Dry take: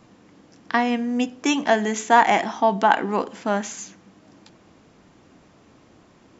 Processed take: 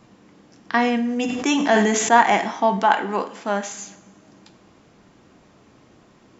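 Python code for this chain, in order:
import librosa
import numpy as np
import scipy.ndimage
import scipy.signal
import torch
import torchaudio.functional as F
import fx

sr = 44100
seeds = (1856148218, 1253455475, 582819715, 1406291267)

y = fx.low_shelf(x, sr, hz=230.0, db=-8.5, at=(2.79, 3.71))
y = fx.rev_double_slope(y, sr, seeds[0], early_s=0.55, late_s=2.0, knee_db=-18, drr_db=8.5)
y = fx.sustainer(y, sr, db_per_s=29.0, at=(0.72, 2.17))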